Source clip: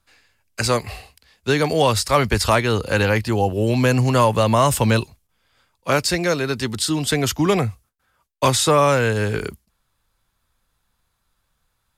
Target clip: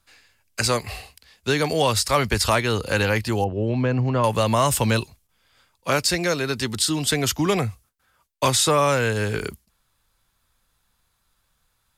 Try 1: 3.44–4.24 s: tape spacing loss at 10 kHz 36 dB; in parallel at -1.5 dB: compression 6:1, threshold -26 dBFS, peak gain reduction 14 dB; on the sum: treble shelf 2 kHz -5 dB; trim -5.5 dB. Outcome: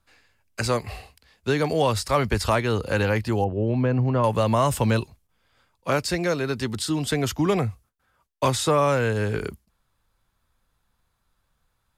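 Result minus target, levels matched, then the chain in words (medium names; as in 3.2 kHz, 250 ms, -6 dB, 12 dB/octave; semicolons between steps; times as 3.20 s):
4 kHz band -5.0 dB
3.44–4.24 s: tape spacing loss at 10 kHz 36 dB; in parallel at -1.5 dB: compression 6:1, threshold -26 dBFS, peak gain reduction 14 dB; on the sum: treble shelf 2 kHz +4 dB; trim -5.5 dB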